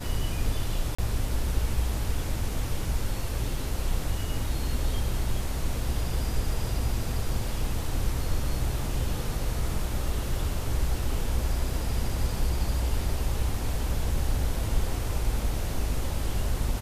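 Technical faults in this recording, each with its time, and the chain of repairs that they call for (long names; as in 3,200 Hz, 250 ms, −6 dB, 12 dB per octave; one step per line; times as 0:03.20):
0:00.95–0:00.98: drop-out 35 ms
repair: repair the gap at 0:00.95, 35 ms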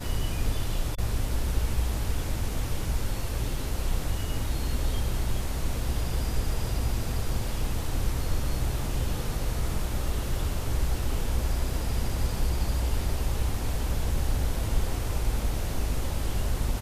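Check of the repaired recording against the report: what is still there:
none of them is left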